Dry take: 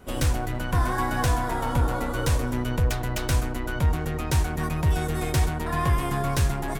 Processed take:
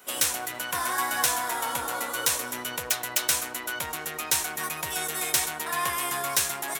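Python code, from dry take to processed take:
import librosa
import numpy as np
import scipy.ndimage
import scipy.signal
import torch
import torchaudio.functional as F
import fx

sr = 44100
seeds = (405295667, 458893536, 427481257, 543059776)

y = fx.highpass(x, sr, hz=470.0, slope=6)
y = fx.tilt_eq(y, sr, slope=3.5)
y = fx.notch(y, sr, hz=4700.0, q=21.0)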